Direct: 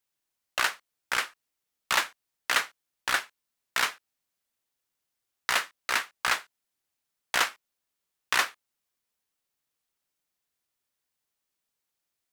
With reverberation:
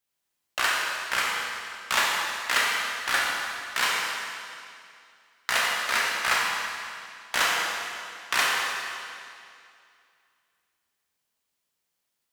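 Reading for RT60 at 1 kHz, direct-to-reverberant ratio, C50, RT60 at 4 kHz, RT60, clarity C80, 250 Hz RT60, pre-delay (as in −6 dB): 2.4 s, −4.0 dB, −1.5 dB, 2.3 s, 2.4 s, 0.0 dB, 2.5 s, 22 ms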